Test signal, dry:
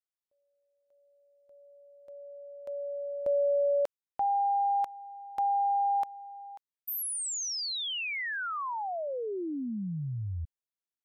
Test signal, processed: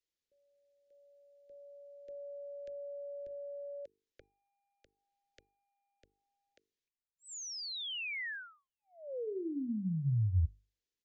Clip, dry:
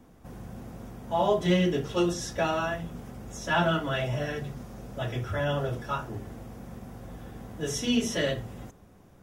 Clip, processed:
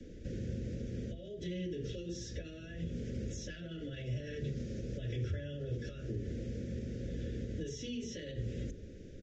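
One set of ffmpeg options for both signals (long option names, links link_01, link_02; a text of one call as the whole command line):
ffmpeg -i in.wav -filter_complex "[0:a]acrossover=split=260|1600|2500[link_01][link_02][link_03][link_04];[link_03]acrusher=bits=4:mix=0:aa=0.5[link_05];[link_01][link_02][link_05][link_04]amix=inputs=4:normalize=0,equalizer=frequency=160:width_type=o:width=1.4:gain=-7,acompressor=threshold=-33dB:ratio=6:release=128:detection=rms,alimiter=level_in=11dB:limit=-24dB:level=0:latency=1:release=151,volume=-11dB,bandreject=frequency=50:width_type=h:width=6,bandreject=frequency=100:width_type=h:width=6,bandreject=frequency=150:width_type=h:width=6,bandreject=frequency=200:width_type=h:width=6,bandreject=frequency=250:width_type=h:width=6,bandreject=frequency=300:width_type=h:width=6,bandreject=frequency=350:width_type=h:width=6,bandreject=frequency=400:width_type=h:width=6,bandreject=frequency=450:width_type=h:width=6,acrossover=split=150[link_06][link_07];[link_07]acompressor=threshold=-46dB:ratio=6:attack=2.5:release=652:knee=2.83:detection=peak[link_08];[link_06][link_08]amix=inputs=2:normalize=0,asuperstop=centerf=940:order=8:qfactor=0.8,aresample=16000,aresample=44100,highshelf=frequency=4400:gain=-10,volume=10.5dB" out.wav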